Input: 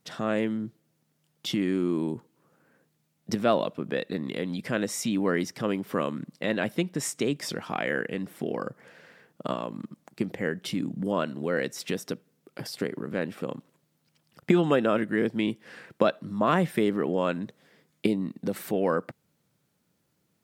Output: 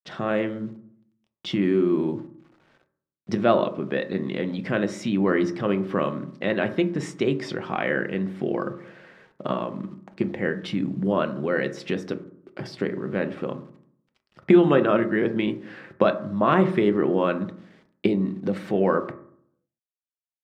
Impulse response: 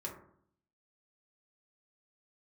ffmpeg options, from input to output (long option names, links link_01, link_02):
-filter_complex "[0:a]acrusher=bits=9:mix=0:aa=0.000001,lowpass=3300,asplit=2[link_01][link_02];[1:a]atrim=start_sample=2205,highshelf=frequency=8500:gain=8.5[link_03];[link_02][link_03]afir=irnorm=-1:irlink=0,volume=-2.5dB[link_04];[link_01][link_04]amix=inputs=2:normalize=0"